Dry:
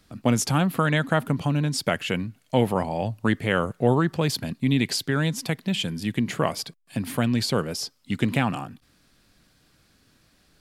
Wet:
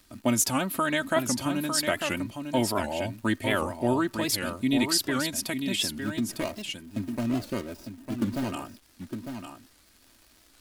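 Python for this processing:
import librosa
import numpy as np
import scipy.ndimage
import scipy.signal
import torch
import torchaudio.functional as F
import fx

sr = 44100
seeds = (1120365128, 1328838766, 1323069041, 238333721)

y = fx.median_filter(x, sr, points=41, at=(5.93, 8.52))
y = fx.high_shelf(y, sr, hz=6100.0, db=11.5)
y = y + 0.76 * np.pad(y, (int(3.2 * sr / 1000.0), 0))[:len(y)]
y = fx.dmg_crackle(y, sr, seeds[0], per_s=210.0, level_db=-39.0)
y = y + 10.0 ** (-7.0 / 20.0) * np.pad(y, (int(903 * sr / 1000.0), 0))[:len(y)]
y = fx.record_warp(y, sr, rpm=78.0, depth_cents=160.0)
y = F.gain(torch.from_numpy(y), -5.5).numpy()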